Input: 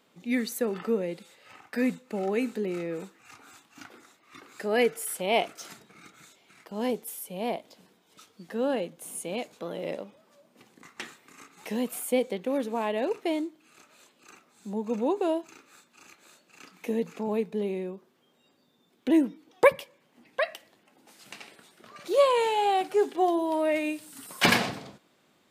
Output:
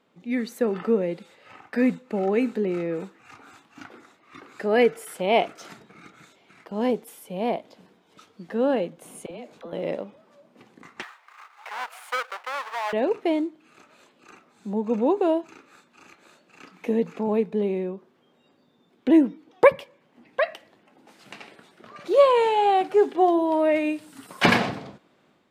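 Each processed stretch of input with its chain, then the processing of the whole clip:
0:09.26–0:09.73: downward compressor 8 to 1, threshold −39 dBFS + all-pass dispersion lows, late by 47 ms, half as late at 510 Hz
0:11.02–0:12.93: each half-wave held at its own peak + high-pass filter 850 Hz 24 dB per octave + high-shelf EQ 2,600 Hz −9.5 dB
whole clip: low-pass filter 2,100 Hz 6 dB per octave; automatic gain control gain up to 5.5 dB

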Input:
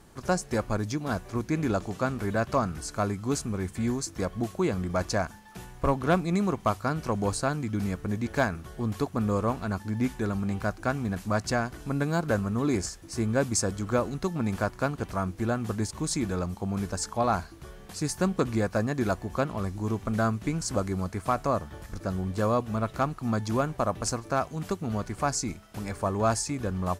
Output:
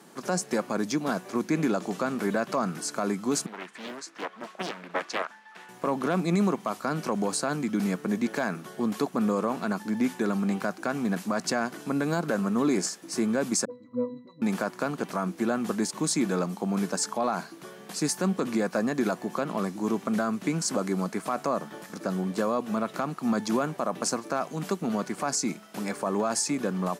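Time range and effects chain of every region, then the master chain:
0:03.46–0:05.69: resonant band-pass 1,700 Hz, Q 0.95 + highs frequency-modulated by the lows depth 1 ms
0:13.65–0:14.42: resonances in every octave B, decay 0.31 s + all-pass dispersion highs, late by 51 ms, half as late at 490 Hz
whole clip: Butterworth high-pass 170 Hz 36 dB per octave; brickwall limiter −21 dBFS; level +4.5 dB

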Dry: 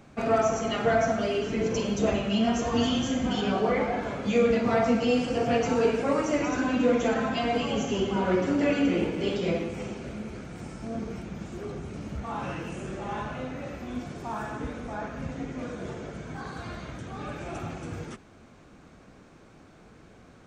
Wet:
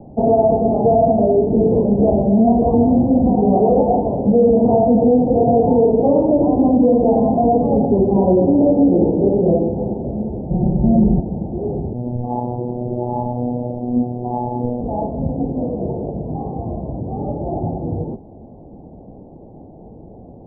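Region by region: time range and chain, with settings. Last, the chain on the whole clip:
0:10.50–0:11.20: spectral tilt −3 dB per octave + mains-hum notches 50/100/150/200/250/300/350/400/450/500 Hz + comb filter 5.4 ms, depth 99%
0:11.93–0:14.81: double-tracking delay 32 ms −2.5 dB + phases set to zero 122 Hz
whole clip: Butterworth low-pass 860 Hz 72 dB per octave; boost into a limiter +18.5 dB; level −4.5 dB

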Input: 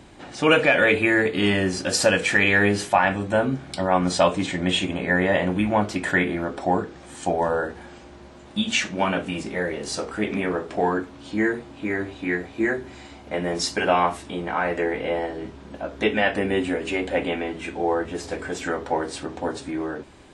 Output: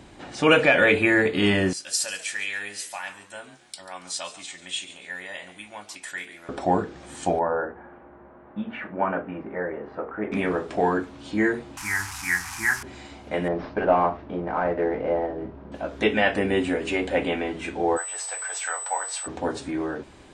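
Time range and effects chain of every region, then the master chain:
0:01.73–0:06.49: first-order pre-emphasis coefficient 0.97 + echo with shifted repeats 140 ms, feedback 35%, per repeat +92 Hz, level −15 dB
0:07.39–0:10.32: low-pass filter 1,600 Hz 24 dB per octave + low-shelf EQ 240 Hz −10.5 dB
0:11.77–0:12.83: linear delta modulator 64 kbit/s, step −31 dBFS + drawn EQ curve 100 Hz 0 dB, 180 Hz −8 dB, 560 Hz −28 dB, 850 Hz +6 dB, 1,500 Hz +6 dB, 2,200 Hz +3 dB, 3,700 Hz −5 dB, 5,300 Hz +8 dB
0:13.48–0:15.72: variable-slope delta modulation 32 kbit/s + low-pass filter 1,300 Hz + parametric band 610 Hz +4 dB 0.34 octaves
0:17.96–0:19.26: steady tone 8,000 Hz −31 dBFS + high-pass filter 730 Hz 24 dB per octave
whole clip: no processing

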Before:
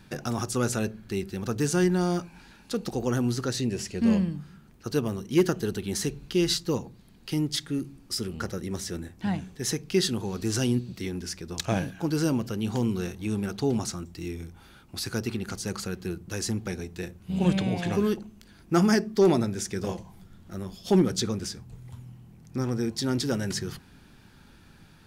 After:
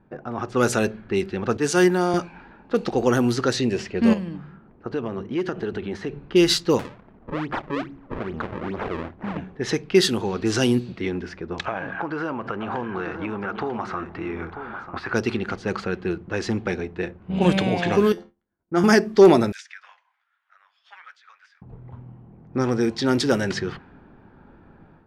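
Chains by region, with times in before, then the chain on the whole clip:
0:01.57–0:02.14: high-pass filter 200 Hz 6 dB per octave + high-shelf EQ 11,000 Hz +8.5 dB + multiband upward and downward expander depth 70%
0:04.13–0:06.25: mains-hum notches 50/100/150 Hz + downward compressor 4 to 1, threshold −31 dBFS
0:06.79–0:09.37: double-tracking delay 25 ms −14 dB + downward compressor 5 to 1, threshold −31 dBFS + sample-and-hold swept by an LFO 35×, swing 160% 2.4 Hz
0:11.66–0:15.14: parametric band 1,200 Hz +14 dB 2.1 octaves + downward compressor 8 to 1, threshold −32 dBFS + single-tap delay 942 ms −10 dB
0:18.12–0:18.84: notch filter 2,600 Hz, Q 7.2 + tuned comb filter 87 Hz, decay 0.43 s, mix 80% + downward expander −49 dBFS
0:19.52–0:21.62: inverse Chebyshev high-pass filter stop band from 360 Hz, stop band 70 dB + downward compressor 12 to 1, threshold −38 dBFS
whole clip: automatic gain control gain up to 9.5 dB; bass and treble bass −9 dB, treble −7 dB; low-pass that shuts in the quiet parts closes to 830 Hz, open at −16.5 dBFS; level +1 dB

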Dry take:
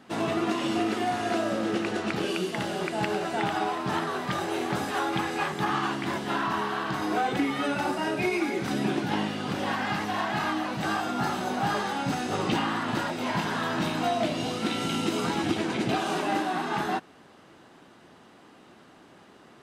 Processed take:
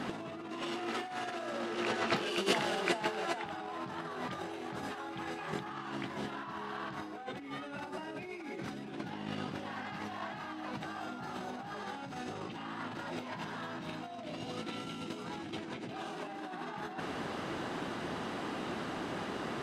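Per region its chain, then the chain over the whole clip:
0:00.62–0:03.46: low-shelf EQ 430 Hz −9.5 dB + frequency shifter +14 Hz + saturating transformer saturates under 2,300 Hz
whole clip: high-shelf EQ 8,100 Hz −9.5 dB; brickwall limiter −23 dBFS; compressor whose output falls as the input rises −40 dBFS, ratio −0.5; level +4 dB

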